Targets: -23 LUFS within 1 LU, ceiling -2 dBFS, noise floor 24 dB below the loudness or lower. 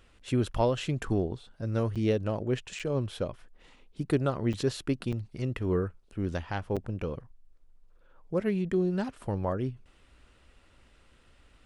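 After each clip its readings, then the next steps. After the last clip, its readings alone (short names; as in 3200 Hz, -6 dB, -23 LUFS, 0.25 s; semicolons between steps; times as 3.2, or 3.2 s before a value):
dropouts 5; longest dropout 6.7 ms; loudness -31.5 LUFS; peak -13.5 dBFS; loudness target -23.0 LUFS
-> interpolate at 1.95/2.79/4.53/5.12/6.76, 6.7 ms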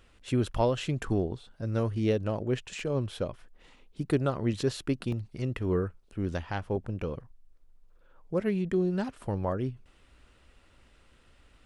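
dropouts 0; loudness -31.5 LUFS; peak -13.5 dBFS; loudness target -23.0 LUFS
-> gain +8.5 dB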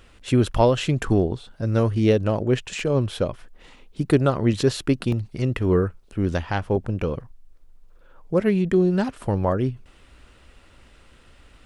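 loudness -23.0 LUFS; peak -5.0 dBFS; noise floor -53 dBFS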